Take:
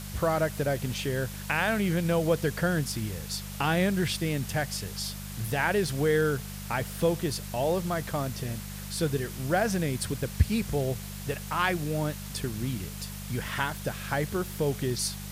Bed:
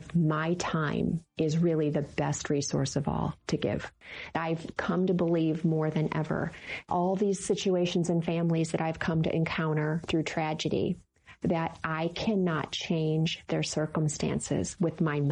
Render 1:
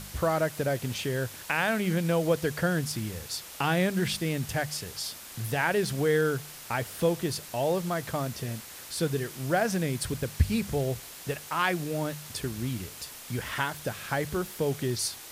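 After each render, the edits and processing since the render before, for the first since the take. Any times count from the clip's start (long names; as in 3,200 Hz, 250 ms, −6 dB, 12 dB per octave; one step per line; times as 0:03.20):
hum removal 50 Hz, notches 4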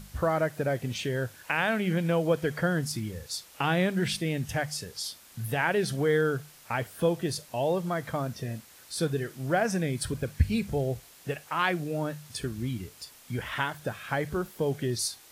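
noise reduction from a noise print 9 dB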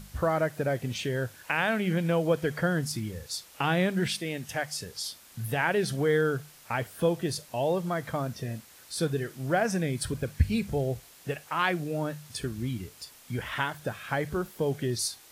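0:04.07–0:04.81: high-pass filter 340 Hz 6 dB per octave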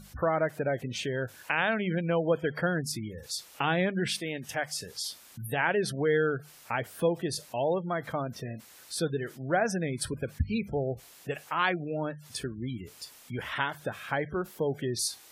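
gate on every frequency bin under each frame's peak −30 dB strong
low-shelf EQ 140 Hz −8 dB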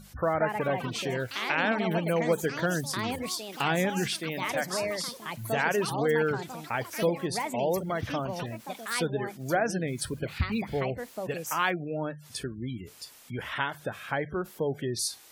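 delay with pitch and tempo change per echo 235 ms, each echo +5 semitones, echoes 3, each echo −6 dB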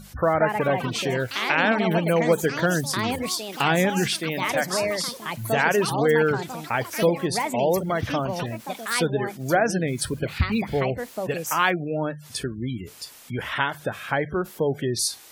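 level +6 dB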